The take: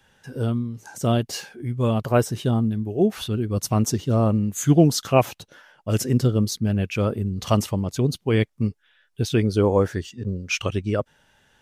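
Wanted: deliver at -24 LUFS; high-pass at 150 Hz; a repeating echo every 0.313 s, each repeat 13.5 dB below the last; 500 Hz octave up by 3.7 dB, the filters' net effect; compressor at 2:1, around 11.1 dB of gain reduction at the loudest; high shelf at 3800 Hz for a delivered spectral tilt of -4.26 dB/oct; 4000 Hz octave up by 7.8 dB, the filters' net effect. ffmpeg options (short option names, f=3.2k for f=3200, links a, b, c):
-af "highpass=150,equalizer=f=500:t=o:g=4.5,highshelf=f=3.8k:g=4.5,equalizer=f=4k:t=o:g=7,acompressor=threshold=-30dB:ratio=2,aecho=1:1:313|626:0.211|0.0444,volume=5.5dB"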